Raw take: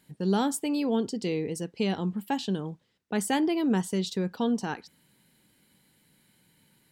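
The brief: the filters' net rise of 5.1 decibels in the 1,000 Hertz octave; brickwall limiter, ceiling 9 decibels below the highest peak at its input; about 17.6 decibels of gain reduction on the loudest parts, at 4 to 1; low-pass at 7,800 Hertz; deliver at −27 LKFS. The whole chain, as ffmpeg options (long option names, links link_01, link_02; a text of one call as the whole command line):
ffmpeg -i in.wav -af "lowpass=7800,equalizer=frequency=1000:width_type=o:gain=6.5,acompressor=threshold=-42dB:ratio=4,volume=18.5dB,alimiter=limit=-17.5dB:level=0:latency=1" out.wav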